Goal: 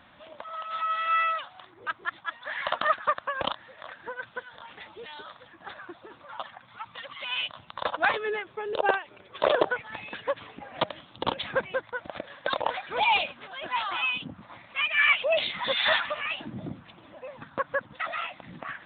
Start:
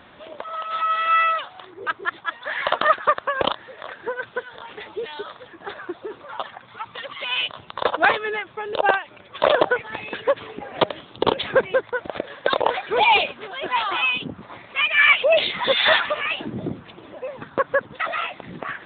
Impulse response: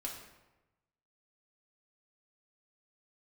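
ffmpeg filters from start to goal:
-af "asetnsamples=nb_out_samples=441:pad=0,asendcmd='8.14 equalizer g 5;9.7 equalizer g -12',equalizer=frequency=410:width=3.2:gain=-12.5,volume=-6.5dB"

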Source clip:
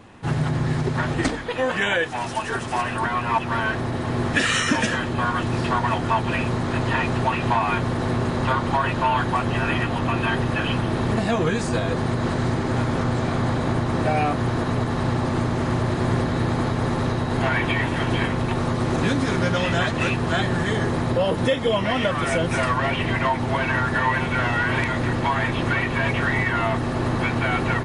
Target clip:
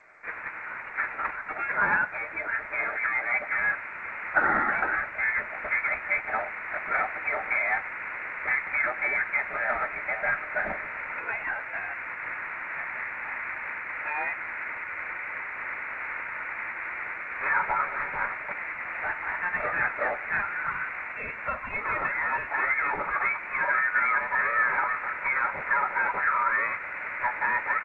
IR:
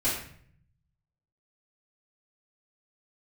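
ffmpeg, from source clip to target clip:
-filter_complex "[0:a]highpass=frequency=1100:width=0.5412,highpass=frequency=1100:width=1.3066,asplit=2[link_01][link_02];[link_02]adelay=94,lowpass=frequency=1700:poles=1,volume=-23dB,asplit=2[link_03][link_04];[link_04]adelay=94,lowpass=frequency=1700:poles=1,volume=0.43,asplit=2[link_05][link_06];[link_06]adelay=94,lowpass=frequency=1700:poles=1,volume=0.43[link_07];[link_01][link_03][link_05][link_07]amix=inputs=4:normalize=0,asplit=2[link_08][link_09];[1:a]atrim=start_sample=2205[link_10];[link_09][link_10]afir=irnorm=-1:irlink=0,volume=-25dB[link_11];[link_08][link_11]amix=inputs=2:normalize=0,lowpass=frequency=2700:width_type=q:width=0.5098,lowpass=frequency=2700:width_type=q:width=0.6013,lowpass=frequency=2700:width_type=q:width=0.9,lowpass=frequency=2700:width_type=q:width=2.563,afreqshift=-3200" -ar 16000 -c:a g722

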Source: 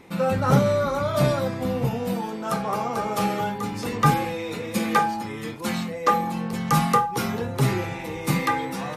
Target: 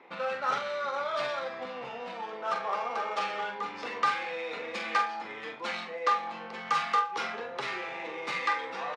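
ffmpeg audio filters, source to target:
ffmpeg -i in.wav -filter_complex "[0:a]acrossover=split=1300[link_01][link_02];[link_01]acompressor=threshold=-29dB:ratio=6[link_03];[link_02]asoftclip=type=hard:threshold=-23.5dB[link_04];[link_03][link_04]amix=inputs=2:normalize=0,adynamicsmooth=sensitivity=4.5:basefreq=2600,highpass=580,lowpass=4900,asplit=2[link_05][link_06];[link_06]adelay=44,volume=-7.5dB[link_07];[link_05][link_07]amix=inputs=2:normalize=0,aecho=1:1:117:0.0794" out.wav

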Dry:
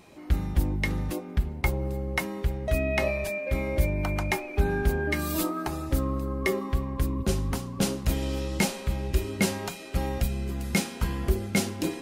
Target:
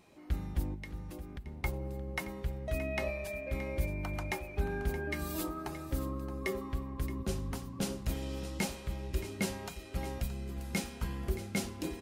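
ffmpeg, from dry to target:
ffmpeg -i in.wav -filter_complex "[0:a]asettb=1/sr,asplit=3[link_01][link_02][link_03];[link_01]atrim=end=0.744[link_04];[link_02]atrim=start=0.74:end=1.46,asetpts=PTS-STARTPTS,afade=type=in:duration=0.004:curve=qsin,afade=type=out:start_time=0.716:duration=0.004:curve=qsin,acompressor=threshold=-33dB:ratio=6[link_05];[link_03]atrim=start=1.456[link_06];[link_04][link_05]acrossfade=duration=0.004:curve1=hsin:curve2=qsin[link_07];[link_07][link_06]acrossfade=duration=0.004:curve1=qsin:curve2=hsin,aecho=1:1:623:0.211,volume=-9dB" out.wav

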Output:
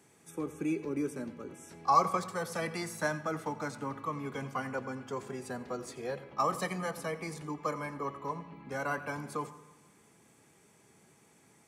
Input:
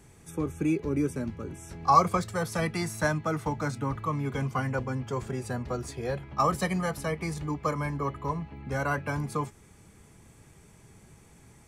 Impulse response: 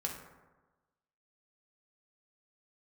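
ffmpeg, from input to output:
-filter_complex "[0:a]highpass=220,asplit=2[link_01][link_02];[1:a]atrim=start_sample=2205,adelay=87[link_03];[link_02][link_03]afir=irnorm=-1:irlink=0,volume=-15.5dB[link_04];[link_01][link_04]amix=inputs=2:normalize=0,volume=-4.5dB"

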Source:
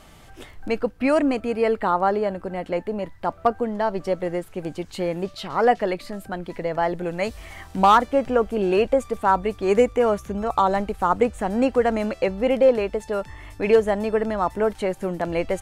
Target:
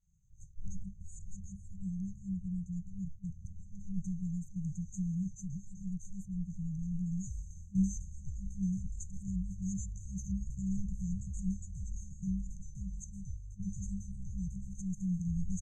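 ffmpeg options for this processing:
ffmpeg -i in.wav -af "agate=range=-33dB:threshold=-34dB:ratio=3:detection=peak,afftfilt=real='re*(1-between(b*sr/4096,200,6100))':imag='im*(1-between(b*sr/4096,200,6100))':win_size=4096:overlap=0.75,firequalizer=gain_entry='entry(130,0);entry(200,-3);entry(360,6);entry(540,-27);entry(790,-14);entry(1200,-28);entry(2500,-19);entry(4000,2);entry(5900,6);entry(10000,-27)':delay=0.05:min_phase=1,volume=1dB" out.wav

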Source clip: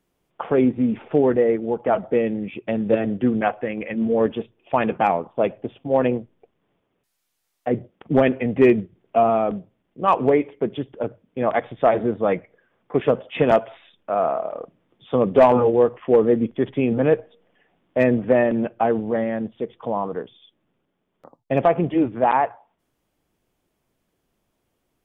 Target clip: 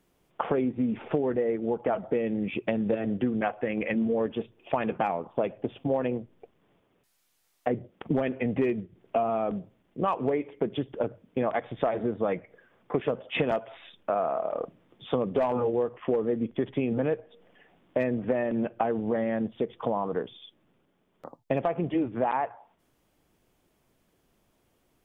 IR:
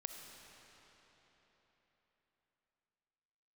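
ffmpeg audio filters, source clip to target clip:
-af "acompressor=threshold=-28dB:ratio=6,volume=3.5dB"

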